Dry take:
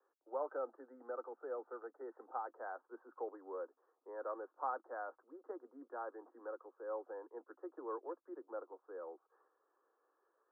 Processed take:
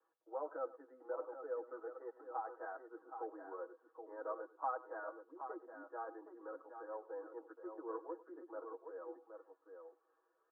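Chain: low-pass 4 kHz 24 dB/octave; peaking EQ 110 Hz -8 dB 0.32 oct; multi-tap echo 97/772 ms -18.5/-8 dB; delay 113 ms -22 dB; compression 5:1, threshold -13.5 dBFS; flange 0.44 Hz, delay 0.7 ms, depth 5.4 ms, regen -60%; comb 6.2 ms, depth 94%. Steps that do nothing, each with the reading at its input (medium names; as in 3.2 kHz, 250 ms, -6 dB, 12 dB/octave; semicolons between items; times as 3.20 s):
low-pass 4 kHz: input has nothing above 1.7 kHz; peaking EQ 110 Hz: input has nothing below 230 Hz; compression, threshold -13.5 dBFS: peak at its input -26.5 dBFS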